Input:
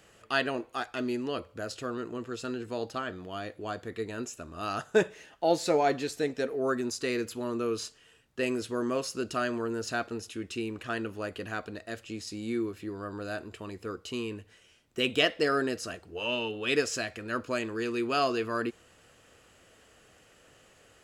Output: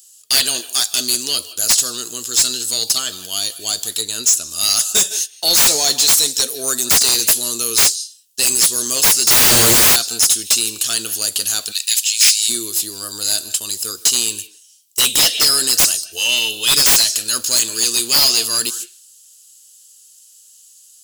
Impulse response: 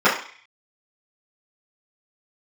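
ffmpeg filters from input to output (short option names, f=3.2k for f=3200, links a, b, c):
-filter_complex "[0:a]agate=range=-21dB:threshold=-47dB:ratio=16:detection=peak,crystalizer=i=7.5:c=0,asplit=2[a][b];[1:a]atrim=start_sample=2205,asetrate=74970,aresample=44100,adelay=150[c];[b][c]afir=irnorm=-1:irlink=0,volume=-36dB[d];[a][d]amix=inputs=2:normalize=0,aexciter=amount=15.6:drive=3.3:freq=3.3k,asettb=1/sr,asplit=3[e][f][g];[e]atrim=end=4.014[h];[f]atrim=start=4.01:end=4.51,asetpts=PTS-STARTPTS,afade=t=in:d=0.004:c=qsin,afade=t=out:st=0.496:d=0.004:c=qsin,highshelf=f=6.5k:g=-9[i];[g]atrim=start=4.506[j];[h][i]acrossfade=d=0.004:c1=hsin:c2=qsin[k];[k][j]acrossfade=d=0.004:c1=qsin:c2=hsin,asettb=1/sr,asplit=3[l][m][n];[l]atrim=end=9.274[o];[m]atrim=start=9.27:end=9.96,asetpts=PTS-STARTPTS,afade=t=in:d=0.004:c=qsin,afade=t=out:st=0.686:d=0.004:c=qsin,aeval=exprs='5.31*sin(PI/2*10*val(0)/5.31)':c=same[p];[n]atrim=start=9.956[q];[o][p]acrossfade=d=0.004:c1=hsin:c2=qsin[r];[r][q]acrossfade=d=0.004:c1=qsin:c2=hsin,acontrast=71,asplit=3[s][t][u];[s]afade=t=out:st=11.71:d=0.02[v];[t]highpass=f=2.4k:t=q:w=2.6,afade=t=in:st=11.71:d=0.02,afade=t=out:st=12.48:d=0.02[w];[u]afade=t=in:st=12.48:d=0.02[x];[v][w][x]amix=inputs=3:normalize=0,volume=-7.5dB"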